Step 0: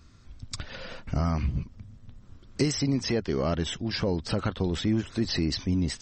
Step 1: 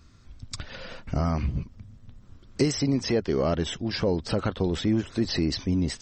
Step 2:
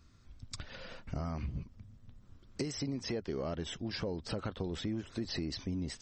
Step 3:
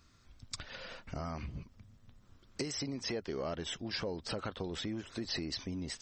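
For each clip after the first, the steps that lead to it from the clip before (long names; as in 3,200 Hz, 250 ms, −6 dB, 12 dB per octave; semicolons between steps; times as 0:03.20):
dynamic equaliser 490 Hz, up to +4 dB, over −39 dBFS, Q 0.81
downward compressor 4 to 1, threshold −26 dBFS, peak gain reduction 8 dB; level −7.5 dB
low-shelf EQ 380 Hz −8 dB; level +3 dB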